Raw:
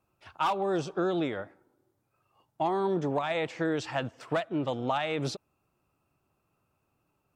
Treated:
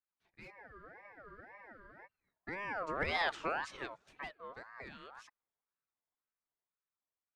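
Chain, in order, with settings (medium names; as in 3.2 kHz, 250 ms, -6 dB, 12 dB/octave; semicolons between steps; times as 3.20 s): Doppler pass-by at 3.24 s, 17 m/s, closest 3.4 m; spectral freeze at 0.59 s, 1.47 s; ring modulator with a swept carrier 1.1 kHz, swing 30%, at 1.9 Hz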